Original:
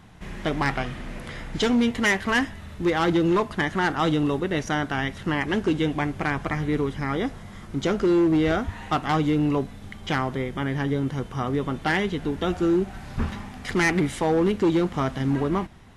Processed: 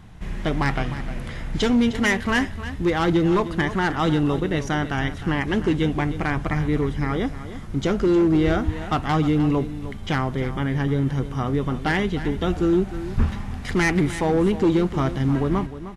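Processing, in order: bass shelf 130 Hz +10 dB; delay 307 ms -13 dB

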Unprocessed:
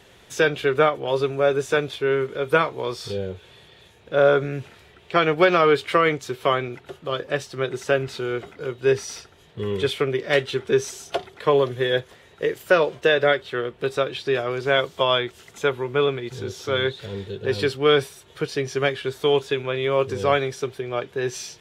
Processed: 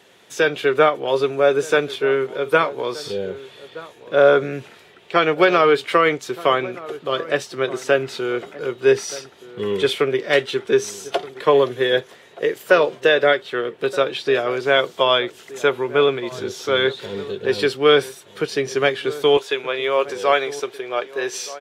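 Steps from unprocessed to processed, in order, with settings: high-pass 200 Hz 12 dB/octave, from 19.37 s 470 Hz; level rider gain up to 5 dB; echo from a far wall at 210 m, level -17 dB

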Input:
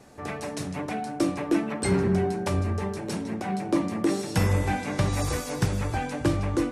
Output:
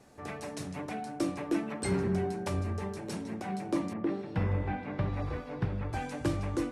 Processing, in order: 3.93–5.93 s: distance through air 400 m; trim -6.5 dB

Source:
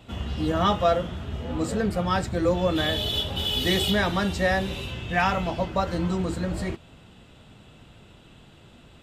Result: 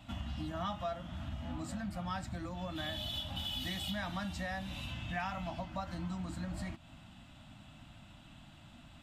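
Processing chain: compression 3:1, threshold -34 dBFS, peak gain reduction 13.5 dB; Chebyshev band-stop 290–640 Hz, order 2; trim -3.5 dB

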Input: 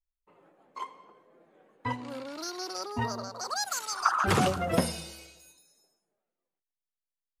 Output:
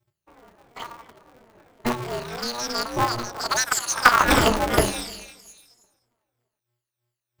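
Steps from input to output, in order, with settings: drifting ripple filter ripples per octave 1.6, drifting -3 Hz, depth 22 dB; polarity switched at an audio rate 120 Hz; trim +3.5 dB

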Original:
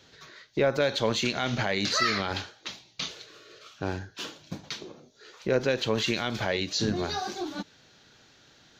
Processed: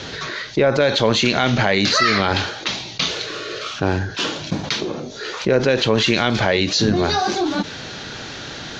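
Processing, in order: low-pass 7.5 kHz 24 dB/octave; treble shelf 5.9 kHz -6 dB; level flattener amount 50%; trim +7.5 dB

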